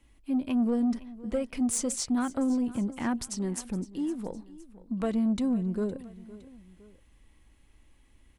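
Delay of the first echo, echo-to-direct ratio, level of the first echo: 512 ms, −17.5 dB, −18.5 dB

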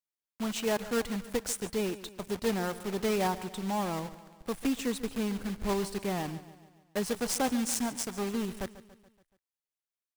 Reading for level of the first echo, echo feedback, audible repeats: −16.0 dB, 54%, 4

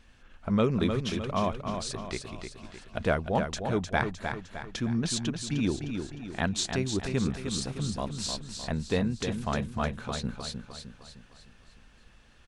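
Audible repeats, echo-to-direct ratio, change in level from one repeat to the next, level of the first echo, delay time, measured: 5, −5.5 dB, −6.5 dB, −6.5 dB, 306 ms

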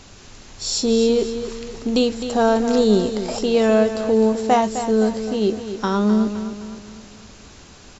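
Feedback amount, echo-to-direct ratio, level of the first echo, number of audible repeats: 46%, −9.0 dB, −10.0 dB, 4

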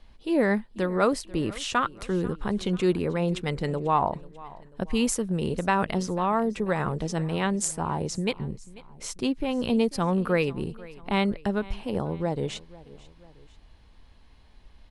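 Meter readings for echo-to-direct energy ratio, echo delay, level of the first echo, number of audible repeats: −19.5 dB, 491 ms, −20.5 dB, 2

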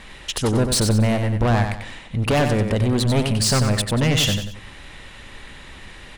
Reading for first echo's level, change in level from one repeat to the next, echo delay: −6.5 dB, −9.0 dB, 93 ms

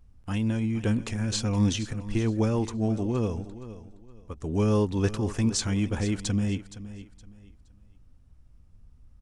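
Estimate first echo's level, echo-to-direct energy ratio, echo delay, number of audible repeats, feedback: −14.5 dB, −14.0 dB, 468 ms, 2, 27%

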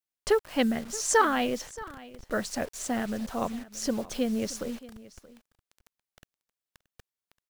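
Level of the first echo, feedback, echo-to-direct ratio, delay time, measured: −19.0 dB, repeats not evenly spaced, −19.0 dB, 626 ms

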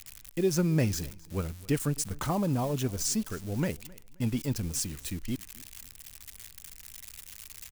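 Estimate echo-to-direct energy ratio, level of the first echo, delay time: −22.5 dB, −23.0 dB, 264 ms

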